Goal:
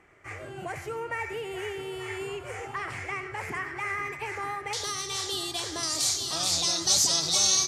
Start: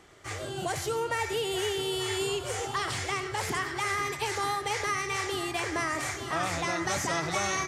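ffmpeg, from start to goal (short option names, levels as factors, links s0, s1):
-af "asetnsamples=n=441:p=0,asendcmd='4.73 highshelf g 8;5.83 highshelf g 14',highshelf=f=2900:t=q:w=3:g=-7,volume=0.596"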